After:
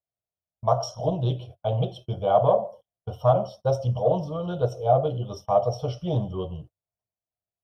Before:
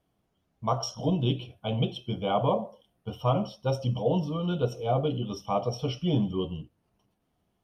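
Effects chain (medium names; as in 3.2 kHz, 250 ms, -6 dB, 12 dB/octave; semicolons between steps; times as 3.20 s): fifteen-band graphic EQ 100 Hz +8 dB, 250 Hz -12 dB, 630 Hz +11 dB, 2.5 kHz -12 dB; gate -43 dBFS, range -27 dB; loudspeaker Doppler distortion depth 0.13 ms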